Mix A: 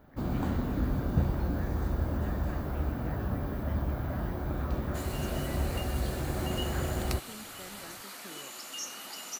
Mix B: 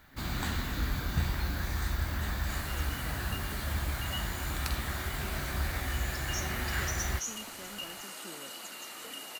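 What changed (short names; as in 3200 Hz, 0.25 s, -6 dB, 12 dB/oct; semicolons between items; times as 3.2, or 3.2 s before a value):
first sound: add ten-band EQ 125 Hz -4 dB, 250 Hz -6 dB, 500 Hz -10 dB, 2000 Hz +10 dB, 4000 Hz +10 dB, 8000 Hz +10 dB, 16000 Hz +8 dB; second sound: entry -2.45 s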